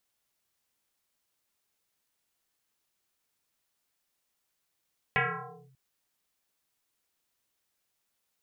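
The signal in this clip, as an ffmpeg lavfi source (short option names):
-f lavfi -i "aevalsrc='0.0891*pow(10,-3*t/0.9)*sin(2*PI*133*t+8*clip(1-t/0.55,0,1)*sin(2*PI*2.26*133*t))':d=0.59:s=44100"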